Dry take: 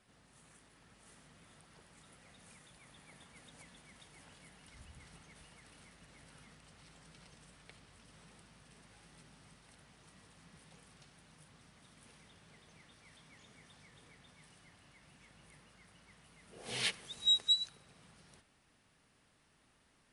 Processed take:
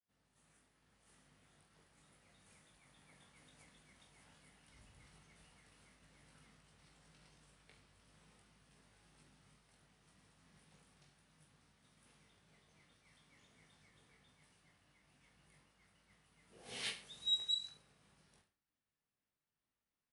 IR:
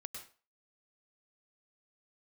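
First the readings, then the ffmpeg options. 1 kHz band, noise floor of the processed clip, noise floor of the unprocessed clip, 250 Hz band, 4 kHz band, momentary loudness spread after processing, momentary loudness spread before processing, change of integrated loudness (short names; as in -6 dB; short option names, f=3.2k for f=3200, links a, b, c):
-7.0 dB, under -85 dBFS, -71 dBFS, -7.5 dB, -6.5 dB, 15 LU, 14 LU, -6.5 dB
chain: -af "agate=range=-33dB:threshold=-59dB:ratio=3:detection=peak,aecho=1:1:20|43|69.45|99.87|134.8:0.631|0.398|0.251|0.158|0.1,volume=-9dB"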